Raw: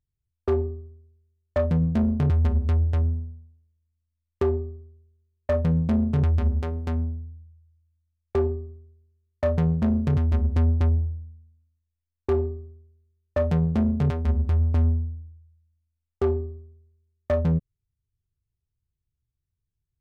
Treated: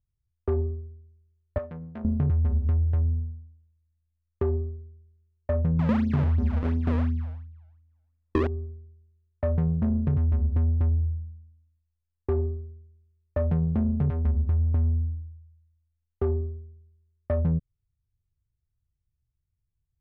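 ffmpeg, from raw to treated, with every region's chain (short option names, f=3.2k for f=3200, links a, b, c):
-filter_complex "[0:a]asettb=1/sr,asplit=3[a][b][c];[a]atrim=end=1.584[d];[b]atrim=start=1.58:end=2.05,asetpts=PTS-STARTPTS,afade=t=in:d=0.004:c=qsin,afade=t=out:st=0.466:d=0.004:c=qsin,highpass=f=1.2k:p=1,adynamicsmooth=sensitivity=7.5:basefreq=1.6k[e];[c]atrim=start=2.046[f];[d][e]acrossfade=d=0.004:c1=hsin:c2=qsin[g];[g][f]acrossfade=d=0.004:c1=qsin:c2=hsin,asettb=1/sr,asplit=3[h][i][j];[h]atrim=end=5.794[k];[i]atrim=start=5.79:end=8.47,asetpts=PTS-STARTPTS,afade=t=in:d=0.004:c=qsin,afade=t=out:st=2.676:d=0.004:c=qsin,equalizer=f=250:t=o:w=1.3:g=11.5,acrusher=samples=35:mix=1:aa=0.000001:lfo=1:lforange=56:lforate=2.8,asplit=2[l][m];[m]adelay=48,volume=-13dB[n];[l][n]amix=inputs=2:normalize=0,atrim=end_sample=118188[o];[j]atrim=start=8.466[p];[k][o]acrossfade=d=0.004:c1=hsin:c2=qsin[q];[q][p]acrossfade=d=0.004:c1=qsin:c2=hsin,lowpass=2k,lowshelf=f=190:g=8.5,acompressor=threshold=-16dB:ratio=6,volume=-4.5dB"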